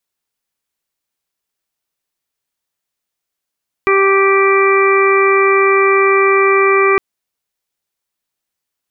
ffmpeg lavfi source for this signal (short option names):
-f lavfi -i "aevalsrc='0.282*sin(2*PI*391*t)+0.0447*sin(2*PI*782*t)+0.211*sin(2*PI*1173*t)+0.0501*sin(2*PI*1564*t)+0.112*sin(2*PI*1955*t)+0.15*sin(2*PI*2346*t)':d=3.11:s=44100"